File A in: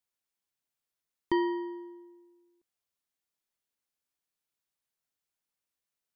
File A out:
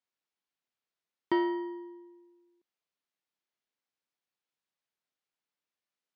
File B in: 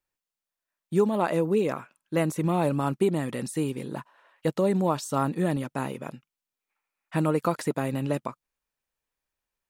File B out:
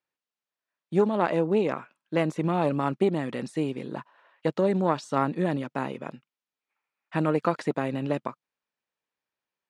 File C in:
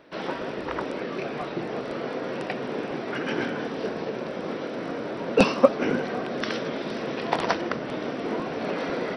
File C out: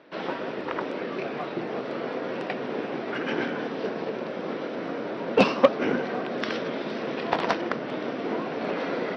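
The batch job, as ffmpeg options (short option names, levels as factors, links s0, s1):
-af "aeval=exprs='0.891*(cos(1*acos(clip(val(0)/0.891,-1,1)))-cos(1*PI/2))+0.398*(cos(2*acos(clip(val(0)/0.891,-1,1)))-cos(2*PI/2))+0.355*(cos(4*acos(clip(val(0)/0.891,-1,1)))-cos(4*PI/2))+0.316*(cos(6*acos(clip(val(0)/0.891,-1,1)))-cos(6*PI/2))+0.0631*(cos(8*acos(clip(val(0)/0.891,-1,1)))-cos(8*PI/2))':c=same,asoftclip=type=tanh:threshold=0.944,highpass=150,lowpass=4600"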